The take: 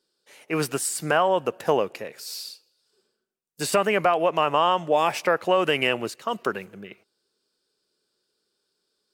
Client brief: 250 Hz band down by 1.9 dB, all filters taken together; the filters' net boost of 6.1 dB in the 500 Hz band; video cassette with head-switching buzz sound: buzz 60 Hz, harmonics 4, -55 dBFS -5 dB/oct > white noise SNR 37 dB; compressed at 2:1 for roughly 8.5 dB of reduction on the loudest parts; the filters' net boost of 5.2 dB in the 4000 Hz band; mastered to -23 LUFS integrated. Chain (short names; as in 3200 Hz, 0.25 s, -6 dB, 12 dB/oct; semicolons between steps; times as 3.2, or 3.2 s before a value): bell 250 Hz -8.5 dB; bell 500 Hz +9 dB; bell 4000 Hz +8 dB; compressor 2:1, threshold -27 dBFS; buzz 60 Hz, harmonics 4, -55 dBFS -5 dB/oct; white noise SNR 37 dB; gain +4 dB